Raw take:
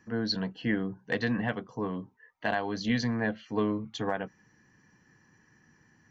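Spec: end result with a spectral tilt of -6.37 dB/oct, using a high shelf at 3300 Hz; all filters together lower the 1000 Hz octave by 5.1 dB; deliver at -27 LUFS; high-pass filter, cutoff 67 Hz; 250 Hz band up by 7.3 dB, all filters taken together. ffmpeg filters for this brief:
-af "highpass=67,equalizer=f=250:t=o:g=9,equalizer=f=1k:t=o:g=-8,highshelf=f=3.3k:g=-6"

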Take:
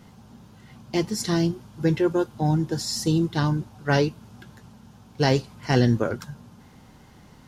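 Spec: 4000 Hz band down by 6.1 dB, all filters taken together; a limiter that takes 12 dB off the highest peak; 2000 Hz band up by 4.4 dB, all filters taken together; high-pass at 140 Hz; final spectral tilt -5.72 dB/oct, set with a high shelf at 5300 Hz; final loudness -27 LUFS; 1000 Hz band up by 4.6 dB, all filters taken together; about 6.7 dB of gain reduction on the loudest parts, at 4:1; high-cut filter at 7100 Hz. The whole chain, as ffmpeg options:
-af "highpass=140,lowpass=7.1k,equalizer=f=1k:t=o:g=5.5,equalizer=f=2k:t=o:g=5.5,equalizer=f=4k:t=o:g=-8,highshelf=f=5.3k:g=-3.5,acompressor=threshold=-22dB:ratio=4,volume=5.5dB,alimiter=limit=-15dB:level=0:latency=1"

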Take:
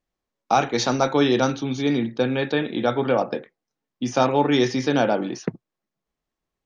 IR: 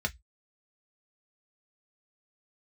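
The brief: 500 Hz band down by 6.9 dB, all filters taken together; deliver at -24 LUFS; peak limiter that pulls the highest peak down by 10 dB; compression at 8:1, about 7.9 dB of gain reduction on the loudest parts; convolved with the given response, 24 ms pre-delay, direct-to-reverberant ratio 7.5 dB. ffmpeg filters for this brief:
-filter_complex "[0:a]equalizer=f=500:t=o:g=-9,acompressor=threshold=-25dB:ratio=8,alimiter=limit=-23dB:level=0:latency=1,asplit=2[a][b];[1:a]atrim=start_sample=2205,adelay=24[c];[b][c]afir=irnorm=-1:irlink=0,volume=-13.5dB[d];[a][d]amix=inputs=2:normalize=0,volume=8.5dB"

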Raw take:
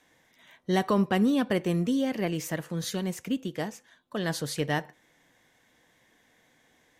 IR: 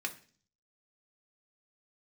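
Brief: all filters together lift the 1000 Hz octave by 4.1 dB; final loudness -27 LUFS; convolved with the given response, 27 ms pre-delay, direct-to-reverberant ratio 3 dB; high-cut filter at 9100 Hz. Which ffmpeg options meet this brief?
-filter_complex "[0:a]lowpass=9.1k,equalizer=f=1k:t=o:g=5.5,asplit=2[a][b];[1:a]atrim=start_sample=2205,adelay=27[c];[b][c]afir=irnorm=-1:irlink=0,volume=-6dB[d];[a][d]amix=inputs=2:normalize=0"

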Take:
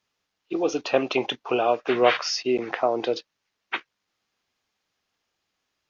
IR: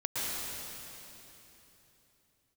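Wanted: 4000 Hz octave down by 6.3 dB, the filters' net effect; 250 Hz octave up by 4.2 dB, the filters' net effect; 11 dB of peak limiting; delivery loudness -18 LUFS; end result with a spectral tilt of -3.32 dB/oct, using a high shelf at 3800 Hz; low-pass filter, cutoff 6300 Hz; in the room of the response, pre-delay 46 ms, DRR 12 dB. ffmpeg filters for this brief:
-filter_complex "[0:a]lowpass=6.3k,equalizer=f=250:t=o:g=6,highshelf=f=3.8k:g=-6.5,equalizer=f=4k:t=o:g=-3.5,alimiter=limit=-14.5dB:level=0:latency=1,asplit=2[a][b];[1:a]atrim=start_sample=2205,adelay=46[c];[b][c]afir=irnorm=-1:irlink=0,volume=-19.5dB[d];[a][d]amix=inputs=2:normalize=0,volume=9dB"

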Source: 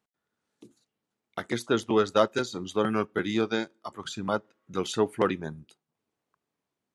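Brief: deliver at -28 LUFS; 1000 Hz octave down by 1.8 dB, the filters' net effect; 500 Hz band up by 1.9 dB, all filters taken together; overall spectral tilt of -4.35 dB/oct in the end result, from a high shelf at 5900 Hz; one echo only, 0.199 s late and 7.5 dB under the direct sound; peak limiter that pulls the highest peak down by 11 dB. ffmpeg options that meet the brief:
-af "equalizer=f=500:t=o:g=3,equalizer=f=1k:t=o:g=-3.5,highshelf=f=5.9k:g=5.5,alimiter=limit=-18dB:level=0:latency=1,aecho=1:1:199:0.422,volume=3dB"

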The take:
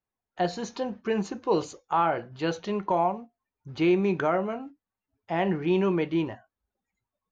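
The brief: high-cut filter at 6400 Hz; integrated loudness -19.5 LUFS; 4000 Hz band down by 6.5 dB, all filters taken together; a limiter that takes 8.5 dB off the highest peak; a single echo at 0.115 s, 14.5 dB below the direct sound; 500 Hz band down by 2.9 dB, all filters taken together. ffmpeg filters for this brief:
-af "lowpass=6.4k,equalizer=f=500:t=o:g=-4,equalizer=f=4k:t=o:g=-9,alimiter=limit=-24dB:level=0:latency=1,aecho=1:1:115:0.188,volume=14.5dB"

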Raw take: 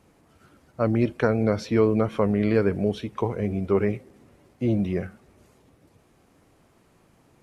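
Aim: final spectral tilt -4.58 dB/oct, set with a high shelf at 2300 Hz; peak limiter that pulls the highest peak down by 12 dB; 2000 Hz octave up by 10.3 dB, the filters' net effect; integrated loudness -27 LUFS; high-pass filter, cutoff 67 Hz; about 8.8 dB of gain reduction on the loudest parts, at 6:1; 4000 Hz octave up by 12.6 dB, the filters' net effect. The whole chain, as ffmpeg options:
-af "highpass=67,equalizer=f=2k:t=o:g=8,highshelf=f=2.3k:g=7,equalizer=f=4k:t=o:g=7,acompressor=threshold=-24dB:ratio=6,volume=6.5dB,alimiter=limit=-16dB:level=0:latency=1"

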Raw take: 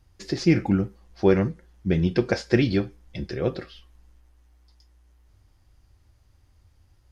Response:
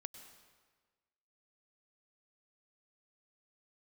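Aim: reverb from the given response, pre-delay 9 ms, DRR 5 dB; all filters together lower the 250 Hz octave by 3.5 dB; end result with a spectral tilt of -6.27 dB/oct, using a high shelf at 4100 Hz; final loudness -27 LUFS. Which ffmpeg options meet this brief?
-filter_complex "[0:a]equalizer=f=250:t=o:g=-5.5,highshelf=f=4.1k:g=-7.5,asplit=2[a][b];[1:a]atrim=start_sample=2205,adelay=9[c];[b][c]afir=irnorm=-1:irlink=0,volume=-0.5dB[d];[a][d]amix=inputs=2:normalize=0,volume=-0.5dB"

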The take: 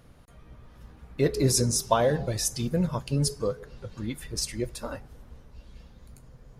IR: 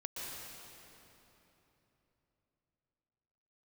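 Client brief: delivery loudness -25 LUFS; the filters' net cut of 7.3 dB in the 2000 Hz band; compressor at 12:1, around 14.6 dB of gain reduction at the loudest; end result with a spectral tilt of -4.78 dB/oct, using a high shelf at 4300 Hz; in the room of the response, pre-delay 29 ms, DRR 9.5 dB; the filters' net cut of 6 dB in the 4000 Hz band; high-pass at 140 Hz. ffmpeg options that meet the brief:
-filter_complex "[0:a]highpass=140,equalizer=f=2k:t=o:g=-8,equalizer=f=4k:t=o:g=-4,highshelf=f=4.3k:g=-4,acompressor=threshold=-32dB:ratio=12,asplit=2[a][b];[1:a]atrim=start_sample=2205,adelay=29[c];[b][c]afir=irnorm=-1:irlink=0,volume=-10dB[d];[a][d]amix=inputs=2:normalize=0,volume=12.5dB"

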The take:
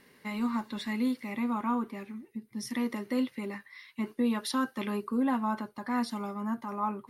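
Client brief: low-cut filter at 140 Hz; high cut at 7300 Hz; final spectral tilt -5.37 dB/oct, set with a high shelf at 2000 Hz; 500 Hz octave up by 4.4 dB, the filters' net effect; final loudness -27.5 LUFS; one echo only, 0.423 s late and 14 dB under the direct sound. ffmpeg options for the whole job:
-af "highpass=140,lowpass=7.3k,equalizer=f=500:t=o:g=5.5,highshelf=f=2k:g=-6.5,aecho=1:1:423:0.2,volume=4.5dB"

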